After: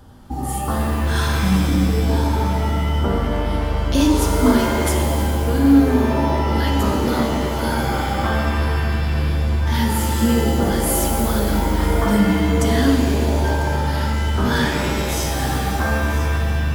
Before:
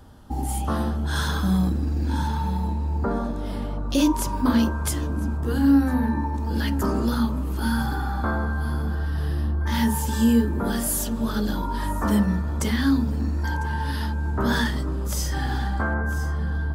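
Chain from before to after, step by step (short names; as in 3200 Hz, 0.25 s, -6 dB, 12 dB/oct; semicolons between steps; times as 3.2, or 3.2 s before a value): shimmer reverb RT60 2.2 s, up +7 st, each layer -2 dB, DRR 2.5 dB; gain +2 dB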